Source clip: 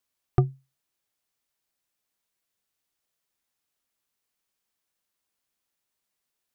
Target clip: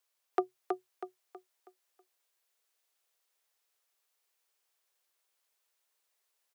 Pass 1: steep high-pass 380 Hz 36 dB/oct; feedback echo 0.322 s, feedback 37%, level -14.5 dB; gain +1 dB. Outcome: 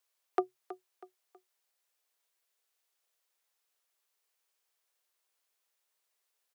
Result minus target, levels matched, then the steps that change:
echo-to-direct -10.5 dB
change: feedback echo 0.322 s, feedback 37%, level -4 dB

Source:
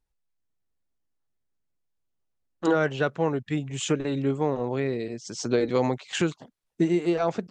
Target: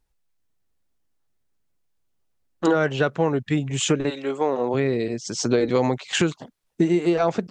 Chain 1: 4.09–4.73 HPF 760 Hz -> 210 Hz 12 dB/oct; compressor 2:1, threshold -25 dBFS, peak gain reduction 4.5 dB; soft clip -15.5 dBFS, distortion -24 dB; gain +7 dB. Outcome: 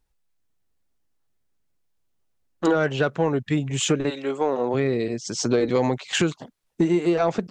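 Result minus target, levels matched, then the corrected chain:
soft clip: distortion +18 dB
4.09–4.73 HPF 760 Hz -> 210 Hz 12 dB/oct; compressor 2:1, threshold -25 dBFS, peak gain reduction 4.5 dB; soft clip -6 dBFS, distortion -42 dB; gain +7 dB

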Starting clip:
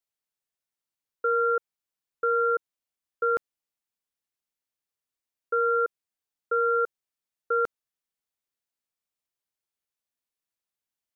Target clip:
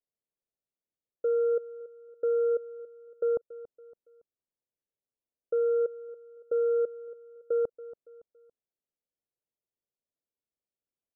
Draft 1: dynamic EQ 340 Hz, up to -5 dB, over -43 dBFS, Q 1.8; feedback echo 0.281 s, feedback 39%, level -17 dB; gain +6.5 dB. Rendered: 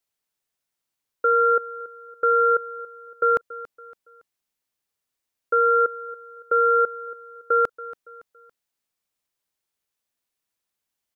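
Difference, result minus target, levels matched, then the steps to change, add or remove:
500 Hz band -5.0 dB
add after dynamic EQ: ladder low-pass 670 Hz, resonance 35%

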